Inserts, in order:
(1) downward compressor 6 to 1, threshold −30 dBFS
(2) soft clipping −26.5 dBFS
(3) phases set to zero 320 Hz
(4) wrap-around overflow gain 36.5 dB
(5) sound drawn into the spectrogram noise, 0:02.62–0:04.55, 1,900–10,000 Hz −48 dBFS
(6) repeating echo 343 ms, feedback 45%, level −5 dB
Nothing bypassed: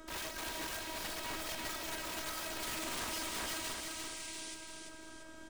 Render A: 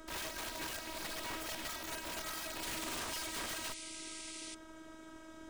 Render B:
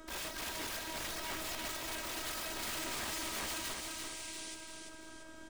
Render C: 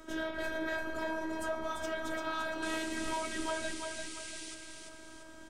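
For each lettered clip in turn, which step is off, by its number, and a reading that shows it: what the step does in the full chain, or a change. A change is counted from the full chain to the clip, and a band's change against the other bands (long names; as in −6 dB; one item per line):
6, echo-to-direct ratio −4.0 dB to none audible
2, distortion level −18 dB
4, change in crest factor +3.5 dB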